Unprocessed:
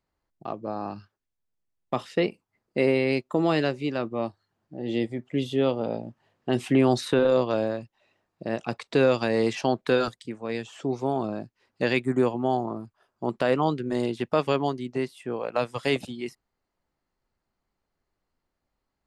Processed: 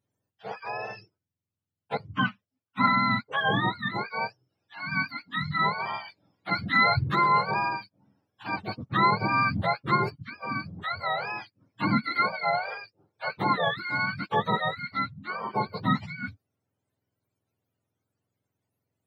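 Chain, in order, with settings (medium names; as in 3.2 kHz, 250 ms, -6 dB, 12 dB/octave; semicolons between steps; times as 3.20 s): spectrum inverted on a logarithmic axis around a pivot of 730 Hz; 1.97–2.88 s: three bands expanded up and down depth 100%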